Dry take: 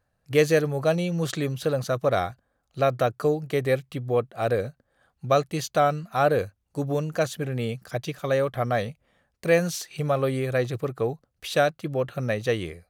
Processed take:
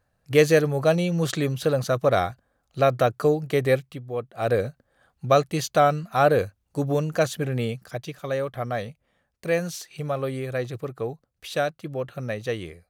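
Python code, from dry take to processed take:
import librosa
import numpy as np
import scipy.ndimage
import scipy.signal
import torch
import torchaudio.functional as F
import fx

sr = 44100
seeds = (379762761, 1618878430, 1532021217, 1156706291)

y = fx.gain(x, sr, db=fx.line((3.75, 2.5), (4.08, -8.0), (4.55, 2.5), (7.58, 2.5), (8.02, -3.5)))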